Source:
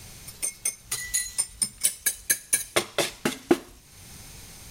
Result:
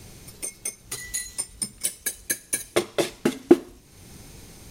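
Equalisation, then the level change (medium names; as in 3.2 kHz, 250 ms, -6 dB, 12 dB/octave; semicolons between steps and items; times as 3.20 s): bass shelf 210 Hz +4 dB; peaking EQ 340 Hz +9 dB 1.7 oct; -3.5 dB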